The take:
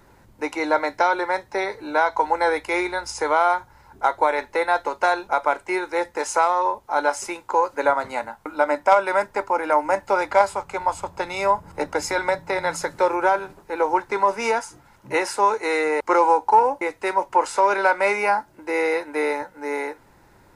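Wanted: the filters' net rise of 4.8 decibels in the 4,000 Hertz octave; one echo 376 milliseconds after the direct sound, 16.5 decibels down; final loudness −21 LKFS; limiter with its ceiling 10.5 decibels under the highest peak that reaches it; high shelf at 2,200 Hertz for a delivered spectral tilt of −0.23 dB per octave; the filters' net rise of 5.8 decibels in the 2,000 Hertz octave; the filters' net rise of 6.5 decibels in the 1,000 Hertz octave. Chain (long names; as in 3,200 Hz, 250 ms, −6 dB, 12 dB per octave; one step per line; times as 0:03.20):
parametric band 1,000 Hz +7 dB
parametric band 2,000 Hz +5.5 dB
high-shelf EQ 2,200 Hz −5 dB
parametric band 4,000 Hz +8.5 dB
brickwall limiter −7.5 dBFS
single-tap delay 376 ms −16.5 dB
level −1.5 dB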